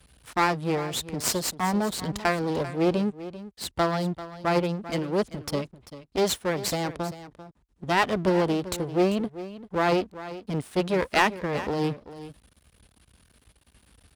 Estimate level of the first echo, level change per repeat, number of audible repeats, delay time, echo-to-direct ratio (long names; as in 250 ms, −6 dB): −14.5 dB, repeats not evenly spaced, 1, 392 ms, −14.5 dB